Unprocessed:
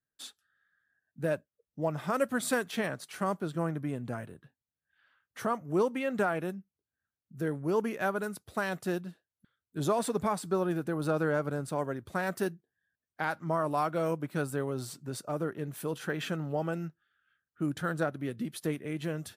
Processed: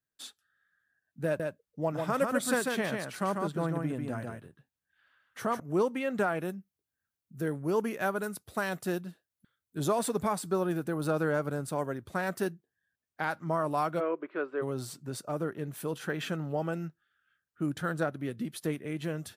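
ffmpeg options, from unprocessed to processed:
-filter_complex "[0:a]asettb=1/sr,asplit=3[s0][s1][s2];[s0]atrim=end=1.254[s3];[s1]atrim=start=1.25:end=5.6,asetpts=PTS-STARTPTS,afade=t=in:d=0.004:c=qsin,afade=t=out:st=4.346:d=0.004:c=qsin,aecho=1:1:145:0.631,atrim=end_sample=191835[s4];[s2]atrim=start=5.596[s5];[s3][s4]acrossfade=d=0.004:c1=hsin:c2=qsin[s6];[s6][s5]acrossfade=d=0.004:c1=qsin:c2=hsin,asettb=1/sr,asplit=3[s7][s8][s9];[s7]atrim=end=6.384[s10];[s8]atrim=start=6.38:end=11.98,asetpts=PTS-STARTPTS,afade=t=in:d=0.004:c=qsin,afade=t=out:st=5.596:d=0.004:c=qsin,highshelf=f=8600:g=6[s11];[s9]atrim=start=11.976[s12];[s10][s11]acrossfade=d=0.004:c1=hsin:c2=qsin[s13];[s13][s12]acrossfade=d=0.004:c1=qsin:c2=hsin,asplit=3[s14][s15][s16];[s14]afade=t=out:st=13.99:d=0.02[s17];[s15]highpass=f=330:w=0.5412,highpass=f=330:w=1.3066,equalizer=f=370:t=q:w=4:g=7,equalizer=f=800:t=q:w=4:g=-7,equalizer=f=1100:t=q:w=4:g=4,lowpass=f=2700:w=0.5412,lowpass=f=2700:w=1.3066,afade=t=in:st=13.99:d=0.02,afade=t=out:st=14.61:d=0.02[s18];[s16]afade=t=in:st=14.61:d=0.02[s19];[s17][s18][s19]amix=inputs=3:normalize=0"

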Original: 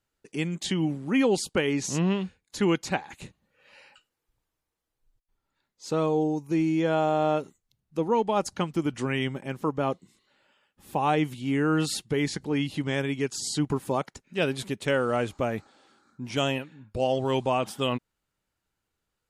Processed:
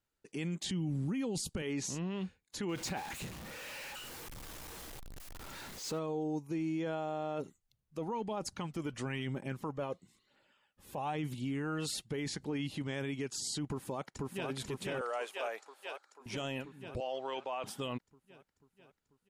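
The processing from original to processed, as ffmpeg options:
-filter_complex "[0:a]asettb=1/sr,asplit=3[s0][s1][s2];[s0]atrim=end=0.694[s3];[s1]atrim=start=0.69:end=1.62,asetpts=PTS-STARTPTS,afade=t=in:d=0.004:c=qsin,afade=t=out:st=0.926:d=0.004:c=qsin,bass=f=250:g=13,treble=f=4000:g=7[s4];[s2]atrim=start=1.616[s5];[s3][s4]acrossfade=d=0.004:c1=hsin:c2=qsin[s6];[s6][s5]acrossfade=d=0.004:c1=qsin:c2=hsin,asettb=1/sr,asplit=3[s7][s8][s9];[s7]atrim=end=2.694[s10];[s8]atrim=start=2.69:end=5.99,asetpts=PTS-STARTPTS,afade=t=in:d=0.004:c=qsin,afade=t=out:st=3.296:d=0.004:c=qsin,aeval=exprs='val(0)+0.5*0.0178*sgn(val(0))':c=same[s11];[s9]atrim=start=5.986[s12];[s10][s11]acrossfade=d=0.004:c1=hsin:c2=qsin[s13];[s13][s12]acrossfade=d=0.004:c1=qsin:c2=hsin,asettb=1/sr,asplit=3[s14][s15][s16];[s14]atrim=end=7.384[s17];[s15]atrim=start=7.38:end=12.1,asetpts=PTS-STARTPTS,afade=t=in:d=0.004:c=qsin,afade=t=out:st=4.716:d=0.004:c=qsin,aphaser=in_gain=1:out_gain=1:delay=2.1:decay=0.37:speed=1:type=triangular[s18];[s16]atrim=start=12.096[s19];[s17][s18]acrossfade=d=0.004:c1=hsin:c2=qsin[s20];[s20][s19]acrossfade=d=0.004:c1=qsin:c2=hsin,asplit=2[s21][s22];[s22]afade=t=in:st=13.68:d=0.01,afade=t=out:st=14.49:d=0.01,aecho=0:1:490|980|1470|1960|2450|2940|3430|3920|4410|4900|5390:0.794328|0.516313|0.335604|0.218142|0.141793|0.0921652|0.0599074|0.0389398|0.0253109|0.0164521|0.0106938[s23];[s21][s23]amix=inputs=2:normalize=0,asettb=1/sr,asplit=3[s24][s25][s26];[s24]atrim=end=15.014[s27];[s25]atrim=start=15.01:end=16.26,asetpts=PTS-STARTPTS,afade=t=in:d=0.004:c=qsin,afade=t=out:st=1.246:d=0.004:c=qsin,highpass=f=510:w=0.5412,highpass=f=510:w=1.3066[s28];[s26]atrim=start=16.256[s29];[s27][s28]acrossfade=d=0.004:c1=hsin:c2=qsin[s30];[s30][s29]acrossfade=d=0.004:c1=qsin:c2=hsin,asettb=1/sr,asplit=3[s31][s32][s33];[s31]atrim=end=17.004[s34];[s32]atrim=start=17:end=17.64,asetpts=PTS-STARTPTS,afade=t=in:d=0.004:c=qsin,afade=t=out:st=0.636:d=0.004:c=qsin,highpass=580,lowpass=4400[s35];[s33]atrim=start=17.636[s36];[s34][s35]acrossfade=d=0.004:c1=hsin:c2=qsin[s37];[s37][s36]acrossfade=d=0.004:c1=qsin:c2=hsin,alimiter=limit=0.0668:level=0:latency=1:release=13,volume=0.531"

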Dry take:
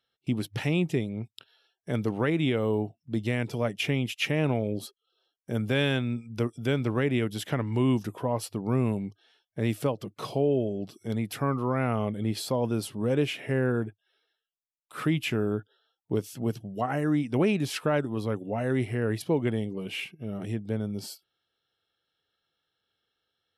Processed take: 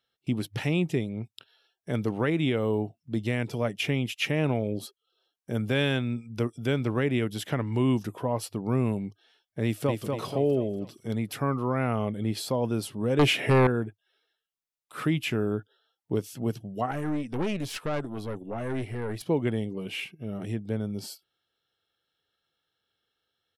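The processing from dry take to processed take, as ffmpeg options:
-filter_complex "[0:a]asplit=2[s0][s1];[s1]afade=t=in:st=9.64:d=0.01,afade=t=out:st=10.04:d=0.01,aecho=0:1:240|480|720|960|1200|1440:0.630957|0.283931|0.127769|0.057496|0.0258732|0.0116429[s2];[s0][s2]amix=inputs=2:normalize=0,asettb=1/sr,asplit=3[s3][s4][s5];[s3]atrim=end=13.194[s6];[s4]atrim=start=13.19:end=13.67,asetpts=PTS-STARTPTS,afade=t=in:d=0.004:c=qsin,afade=t=out:st=0.476:d=0.004:c=qsin,aeval=exprs='0.178*sin(PI/2*2*val(0)/0.178)':c=same[s7];[s5]atrim=start=13.666[s8];[s6][s7]acrossfade=d=0.004:c1=hsin:c2=qsin[s9];[s9][s8]acrossfade=d=0.004:c1=qsin:c2=hsin,asettb=1/sr,asplit=3[s10][s11][s12];[s10]atrim=end=16.914[s13];[s11]atrim=start=16.91:end=19.26,asetpts=PTS-STARTPTS,afade=t=in:d=0.004:c=qsin,afade=t=out:st=2.346:d=0.004:c=qsin,aeval=exprs='(tanh(15.8*val(0)+0.55)-tanh(0.55))/15.8':c=same[s14];[s12]atrim=start=19.256[s15];[s13][s14]acrossfade=d=0.004:c1=hsin:c2=qsin[s16];[s16][s15]acrossfade=d=0.004:c1=qsin:c2=hsin"

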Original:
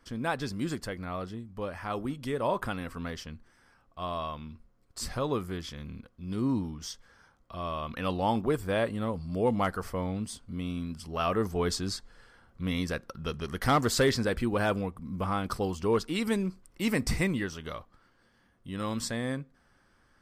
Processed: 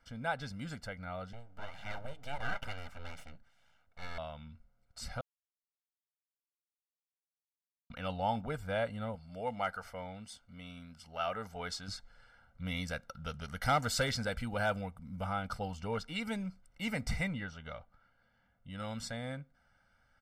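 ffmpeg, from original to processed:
-filter_complex "[0:a]asettb=1/sr,asplit=3[s0][s1][s2];[s0]atrim=end=1.334[s3];[s1]atrim=start=1.33:end=4.18,asetpts=PTS-STARTPTS,afade=t=in:d=0.004:c=qsin,afade=t=out:st=2.846:d=0.004:c=qsin,aeval=exprs='abs(val(0))':c=same[s4];[s2]atrim=start=4.176[s5];[s3][s4]acrossfade=d=0.004:c1=hsin:c2=qsin[s6];[s6][s5]acrossfade=d=0.004:c1=qsin:c2=hsin,asettb=1/sr,asplit=3[s7][s8][s9];[s7]atrim=end=9.154[s10];[s8]atrim=start=9.15:end=11.88,asetpts=PTS-STARTPTS,afade=t=in:d=0.004:c=qsin,afade=t=out:st=2.726:d=0.004:c=qsin,lowshelf=f=270:g=-11[s11];[s9]atrim=start=11.876[s12];[s10][s11]acrossfade=d=0.004:c1=hsin:c2=qsin[s13];[s13][s12]acrossfade=d=0.004:c1=qsin:c2=hsin,asettb=1/sr,asplit=3[s14][s15][s16];[s14]atrim=end=12.654[s17];[s15]atrim=start=12.65:end=15.32,asetpts=PTS-STARTPTS,afade=t=in:d=0.004:c=qsin,afade=t=out:st=2.666:d=0.004:c=qsin,highshelf=f=5000:g=7[s18];[s16]atrim=start=15.316[s19];[s17][s18]acrossfade=d=0.004:c1=hsin:c2=qsin[s20];[s20][s19]acrossfade=d=0.004:c1=qsin:c2=hsin,asettb=1/sr,asplit=3[s21][s22][s23];[s21]atrim=end=17.284[s24];[s22]atrim=start=17.28:end=18.7,asetpts=PTS-STARTPTS,afade=t=in:d=0.004:c=qsin,afade=t=out:st=1.416:d=0.004:c=qsin,aemphasis=mode=reproduction:type=50fm[s25];[s23]atrim=start=18.696[s26];[s24][s25]acrossfade=d=0.004:c1=hsin:c2=qsin[s27];[s27][s26]acrossfade=d=0.004:c1=qsin:c2=hsin,asplit=3[s28][s29][s30];[s28]atrim=end=5.21,asetpts=PTS-STARTPTS,afade=t=out:st=5.206:d=0.004:c=hsin[s31];[s29]atrim=start=5.21:end=7.9,asetpts=PTS-STARTPTS,volume=0[s32];[s30]atrim=start=7.9,asetpts=PTS-STARTPTS,afade=t=in:d=0.004:c=hsin[s33];[s31][s32][s33]concat=n=3:v=0:a=1,lowpass=f=2200:p=1,tiltshelf=f=1200:g=-4,aecho=1:1:1.4:0.91,volume=0.501"

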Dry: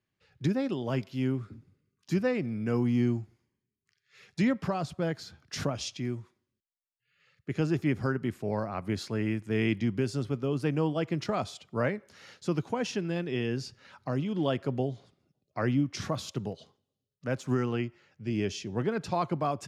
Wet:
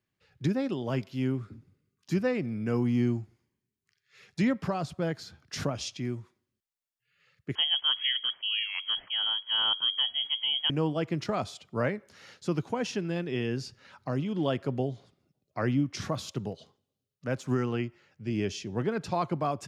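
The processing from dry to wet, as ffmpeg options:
-filter_complex "[0:a]asettb=1/sr,asplit=3[s0][s1][s2];[s0]atrim=end=7.554[s3];[s1]atrim=start=7.55:end=10.7,asetpts=PTS-STARTPTS,afade=t=in:d=0.004:c=qsin,afade=t=out:st=3.146:d=0.004:c=qsin,lowpass=f=2900:t=q:w=0.5098,lowpass=f=2900:t=q:w=0.6013,lowpass=f=2900:t=q:w=0.9,lowpass=f=2900:t=q:w=2.563,afreqshift=-3400[s4];[s2]atrim=start=10.696[s5];[s3][s4]acrossfade=d=0.004:c1=hsin:c2=qsin[s6];[s6][s5]acrossfade=d=0.004:c1=qsin:c2=hsin"

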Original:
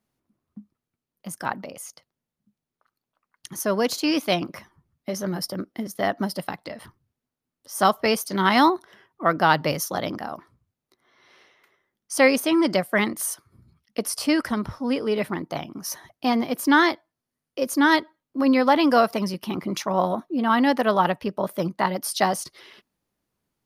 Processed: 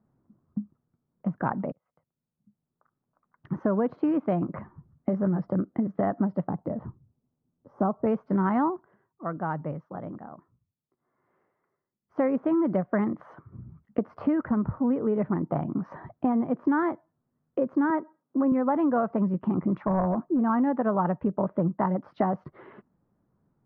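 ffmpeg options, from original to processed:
-filter_complex "[0:a]asettb=1/sr,asplit=3[s0][s1][s2];[s0]atrim=end=6.444[s3];[s1]atrim=start=6.44:end=8.07,asetpts=PTS-STARTPTS,afade=t=in:d=0.004:c=qsin,afade=t=out:st=1.626:d=0.004:c=qsin,equalizer=f=2400:t=o:w=2.1:g=-14.5[s4];[s2]atrim=start=8.066[s5];[s3][s4]acrossfade=d=0.004:c1=hsin:c2=qsin[s6];[s6][s5]acrossfade=d=0.004:c1=qsin:c2=hsin,asettb=1/sr,asplit=3[s7][s8][s9];[s7]atrim=end=17.904[s10];[s8]atrim=start=17.9:end=18.52,asetpts=PTS-STARTPTS,afade=t=in:d=0.004:c=qsin,afade=t=out:st=0.616:d=0.004:c=qsin,highpass=240,lowpass=2300[s11];[s9]atrim=start=18.516[s12];[s10][s11]acrossfade=d=0.004:c1=hsin:c2=qsin[s13];[s13][s12]acrossfade=d=0.004:c1=qsin:c2=hsin,asettb=1/sr,asplit=3[s14][s15][s16];[s14]atrim=end=19.704[s17];[s15]atrim=start=19.7:end=20.42,asetpts=PTS-STARTPTS,afade=t=in:d=0.004:c=qsin,afade=t=out:st=0.716:d=0.004:c=qsin,aeval=exprs='clip(val(0),-1,0.1)':c=same[s18];[s16]atrim=start=20.416[s19];[s17][s18]acrossfade=d=0.004:c1=hsin:c2=qsin[s20];[s20][s19]acrossfade=d=0.004:c1=qsin:c2=hsin,asplit=4[s21][s22][s23][s24];[s21]atrim=end=1.72,asetpts=PTS-STARTPTS,afade=t=out:st=1.716:d=0.004:c=hsin[s25];[s22]atrim=start=1.72:end=8.97,asetpts=PTS-STARTPTS,afade=t=in:d=1.9,afade=t=out:st=6.93:d=0.32:silence=0.141254[s26];[s23]atrim=start=8.97:end=12.03,asetpts=PTS-STARTPTS,volume=0.141[s27];[s24]atrim=start=12.03,asetpts=PTS-STARTPTS,afade=t=in:d=0.32:silence=0.141254[s28];[s25][s26][s27][s28]concat=n=4:v=0:a=1,lowpass=f=1400:w=0.5412,lowpass=f=1400:w=1.3066,equalizer=f=150:t=o:w=1.7:g=8.5,acompressor=threshold=0.0355:ratio=4,volume=1.78"

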